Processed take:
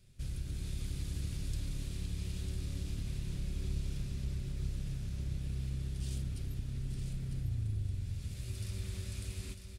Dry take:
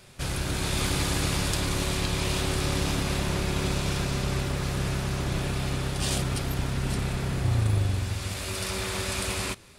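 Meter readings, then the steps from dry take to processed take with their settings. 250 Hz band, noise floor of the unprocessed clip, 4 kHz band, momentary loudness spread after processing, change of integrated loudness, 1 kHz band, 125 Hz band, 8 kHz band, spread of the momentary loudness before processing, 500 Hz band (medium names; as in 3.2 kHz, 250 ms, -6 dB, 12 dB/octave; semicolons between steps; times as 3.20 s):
-14.5 dB, -34 dBFS, -20.0 dB, 3 LU, -11.5 dB, under -25 dB, -9.5 dB, -18.5 dB, 4 LU, -22.0 dB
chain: amplifier tone stack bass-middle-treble 10-0-1; compression 2:1, threshold -40 dBFS, peak gain reduction 6 dB; delay 950 ms -7 dB; trim +4 dB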